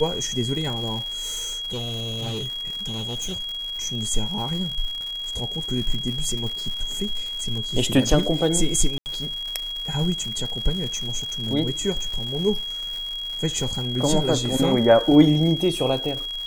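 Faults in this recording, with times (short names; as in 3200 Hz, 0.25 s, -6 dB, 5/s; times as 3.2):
crackle 220/s -30 dBFS
tone 3300 Hz -28 dBFS
1.08–3.66 clipped -25 dBFS
8.98–9.06 gap 79 ms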